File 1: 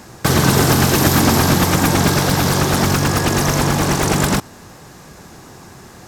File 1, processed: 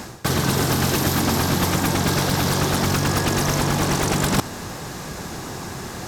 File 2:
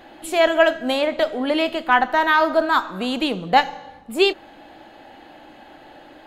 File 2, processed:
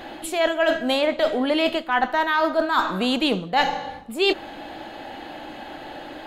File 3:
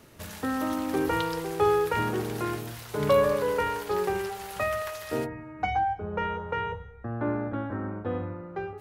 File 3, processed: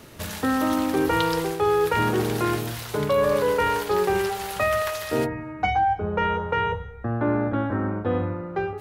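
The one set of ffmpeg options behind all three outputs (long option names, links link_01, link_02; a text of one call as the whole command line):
ffmpeg -i in.wav -af "equalizer=frequency=3700:width_type=o:width=0.77:gain=2,areverse,acompressor=threshold=-25dB:ratio=8,areverse,volume=7.5dB" out.wav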